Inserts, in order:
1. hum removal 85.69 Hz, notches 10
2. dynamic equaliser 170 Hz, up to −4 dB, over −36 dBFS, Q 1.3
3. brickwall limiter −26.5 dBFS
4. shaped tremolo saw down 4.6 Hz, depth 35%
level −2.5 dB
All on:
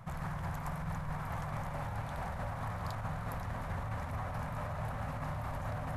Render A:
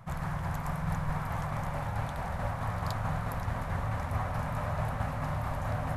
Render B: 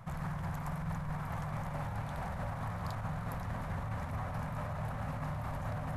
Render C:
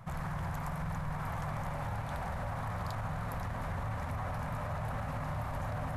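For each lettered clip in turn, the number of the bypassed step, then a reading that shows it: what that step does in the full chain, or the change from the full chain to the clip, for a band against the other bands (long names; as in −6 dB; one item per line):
3, average gain reduction 5.0 dB
2, 250 Hz band +3.0 dB
4, change in crest factor −1.5 dB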